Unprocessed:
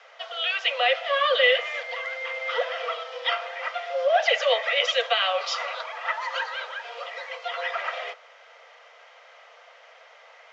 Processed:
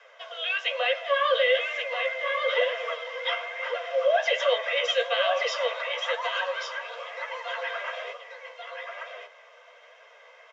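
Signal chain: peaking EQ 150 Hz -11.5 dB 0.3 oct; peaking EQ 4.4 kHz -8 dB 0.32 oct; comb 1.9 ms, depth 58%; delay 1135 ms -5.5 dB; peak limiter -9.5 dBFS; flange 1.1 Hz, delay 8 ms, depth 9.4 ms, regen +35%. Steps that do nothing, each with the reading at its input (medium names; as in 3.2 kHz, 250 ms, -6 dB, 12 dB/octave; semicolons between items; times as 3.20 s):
peaking EQ 150 Hz: input has nothing below 400 Hz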